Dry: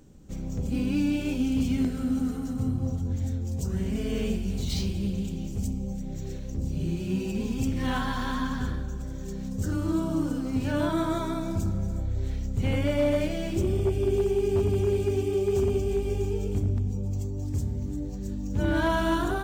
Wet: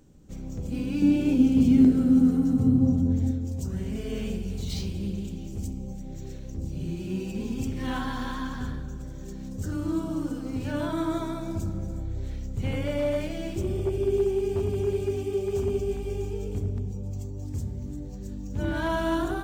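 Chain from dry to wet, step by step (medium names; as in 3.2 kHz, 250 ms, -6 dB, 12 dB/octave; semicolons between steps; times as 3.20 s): 1.02–3.31 s: peaking EQ 250 Hz +10.5 dB 2.6 oct; band-passed feedback delay 70 ms, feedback 79%, band-pass 310 Hz, level -7 dB; trim -3 dB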